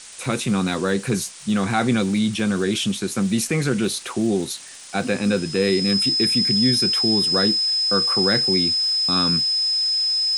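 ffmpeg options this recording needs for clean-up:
-af "adeclick=t=4,bandreject=f=5.1k:w=30,afftdn=nr=30:nf=-33"

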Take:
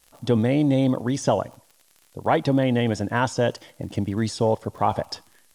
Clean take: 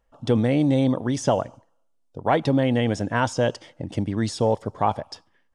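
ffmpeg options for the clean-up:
-af "adeclick=t=4,agate=range=-21dB:threshold=-50dB,asetnsamples=n=441:p=0,asendcmd='4.92 volume volume -5.5dB',volume=0dB"

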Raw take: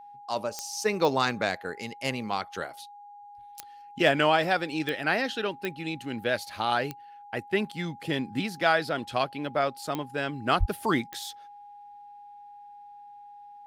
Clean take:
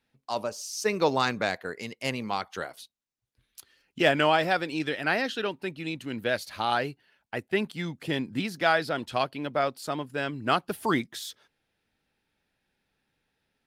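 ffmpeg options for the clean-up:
-filter_complex "[0:a]adeclick=t=4,bandreject=f=820:w=30,asplit=3[a][b][c];[a]afade=t=out:st=10.59:d=0.02[d];[b]highpass=f=140:w=0.5412,highpass=f=140:w=1.3066,afade=t=in:st=10.59:d=0.02,afade=t=out:st=10.71:d=0.02[e];[c]afade=t=in:st=10.71:d=0.02[f];[d][e][f]amix=inputs=3:normalize=0"

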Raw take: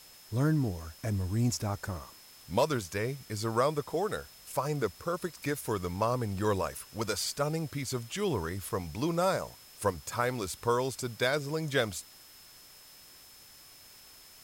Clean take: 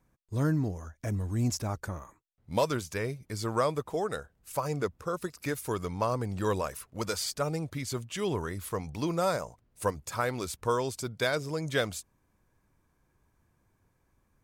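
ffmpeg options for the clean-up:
-af "bandreject=f=5.2k:w=30,afftdn=nr=17:nf=-54"

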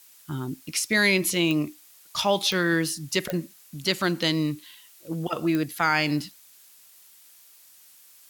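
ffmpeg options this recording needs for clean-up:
-af "adeclick=t=4,afftdn=nr=18:nf=-53"

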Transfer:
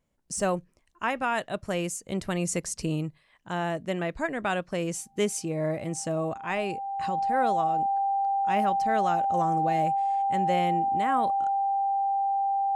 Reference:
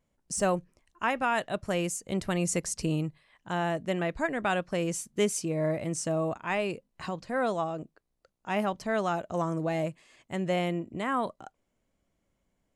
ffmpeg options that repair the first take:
-af "bandreject=f=790:w=30"

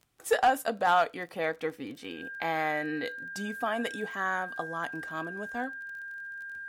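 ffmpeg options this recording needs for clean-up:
-af "adeclick=t=4,bandreject=f=1.6k:w=30"

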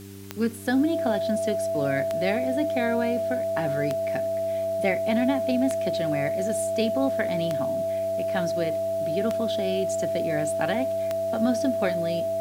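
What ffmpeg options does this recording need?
-af "adeclick=t=4,bandreject=f=98.5:t=h:w=4,bandreject=f=197:t=h:w=4,bandreject=f=295.5:t=h:w=4,bandreject=f=394:t=h:w=4,bandreject=f=660:w=30,afwtdn=0.0032"

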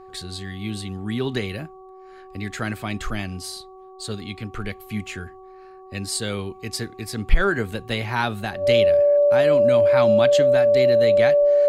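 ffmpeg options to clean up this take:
-af "bandreject=f=377.1:t=h:w=4,bandreject=f=754.2:t=h:w=4,bandreject=f=1.1313k:t=h:w=4,bandreject=f=580:w=30"

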